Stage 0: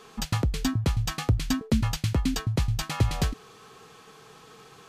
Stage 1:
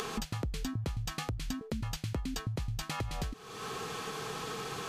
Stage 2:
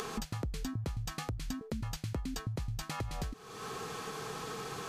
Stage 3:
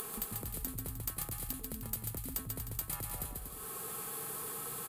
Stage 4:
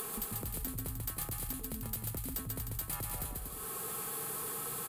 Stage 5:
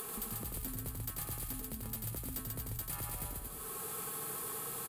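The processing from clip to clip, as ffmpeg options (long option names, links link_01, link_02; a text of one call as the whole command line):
ffmpeg -i in.wav -af "acompressor=mode=upward:threshold=-27dB:ratio=2.5,alimiter=limit=-21.5dB:level=0:latency=1:release=303,acompressor=threshold=-32dB:ratio=6" out.wav
ffmpeg -i in.wav -af "equalizer=frequency=3000:width=1.5:gain=-3.5,volume=-1.5dB" out.wav
ffmpeg -i in.wav -af "aexciter=amount=13.1:drive=6.7:freq=8700,aeval=exprs='(mod(4.22*val(0)+1,2)-1)/4.22':channel_layout=same,aecho=1:1:140|238|306.6|354.6|388.2:0.631|0.398|0.251|0.158|0.1,volume=-8dB" out.wav
ffmpeg -i in.wav -af "asoftclip=type=tanh:threshold=-32.5dB,volume=3dB" out.wav
ffmpeg -i in.wav -af "aecho=1:1:89:0.562,volume=-3dB" out.wav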